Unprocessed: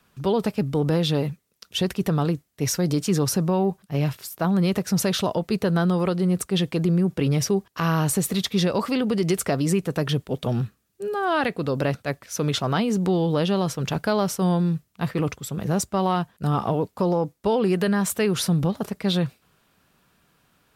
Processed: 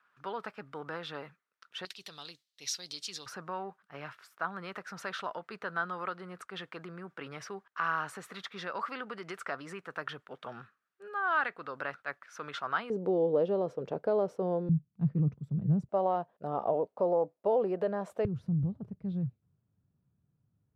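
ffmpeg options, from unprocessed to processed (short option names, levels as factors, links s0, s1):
-af "asetnsamples=n=441:p=0,asendcmd='1.85 bandpass f 4000;3.26 bandpass f 1400;12.9 bandpass f 490;14.69 bandpass f 150;15.89 bandpass f 600;18.25 bandpass f 110',bandpass=f=1400:t=q:w=2.9:csg=0"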